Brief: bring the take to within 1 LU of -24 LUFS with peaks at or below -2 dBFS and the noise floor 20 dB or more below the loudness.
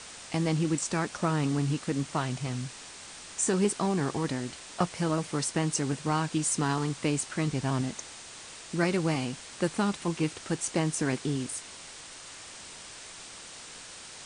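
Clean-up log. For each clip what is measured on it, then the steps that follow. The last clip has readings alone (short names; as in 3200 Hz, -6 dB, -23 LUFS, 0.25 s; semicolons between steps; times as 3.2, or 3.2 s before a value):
noise floor -46 dBFS; noise floor target -50 dBFS; loudness -30.0 LUFS; peak -13.5 dBFS; loudness target -24.0 LUFS
-> denoiser 6 dB, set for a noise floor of -46 dBFS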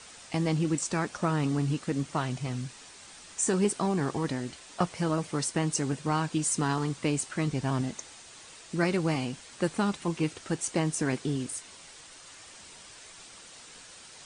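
noise floor -50 dBFS; loudness -30.0 LUFS; peak -13.5 dBFS; loudness target -24.0 LUFS
-> gain +6 dB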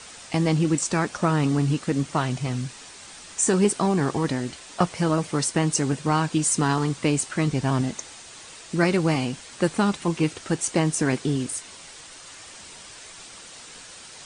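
loudness -24.0 LUFS; peak -7.5 dBFS; noise floor -44 dBFS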